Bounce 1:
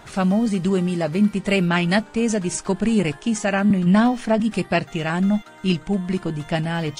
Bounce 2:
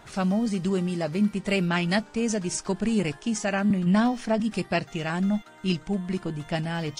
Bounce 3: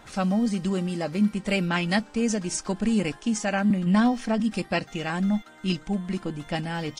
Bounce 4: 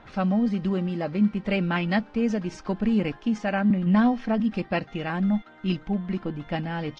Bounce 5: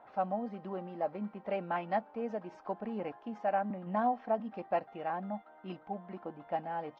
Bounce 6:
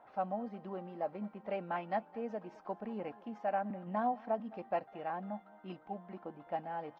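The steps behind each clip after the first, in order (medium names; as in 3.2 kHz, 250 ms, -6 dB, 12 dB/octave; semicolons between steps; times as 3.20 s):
dynamic bell 5.4 kHz, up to +6 dB, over -49 dBFS, Q 2.3; trim -5.5 dB
comb 3.8 ms, depth 35%
distance through air 260 m; trim +1 dB
band-pass filter 750 Hz, Q 2.4
delay 211 ms -22 dB; trim -3 dB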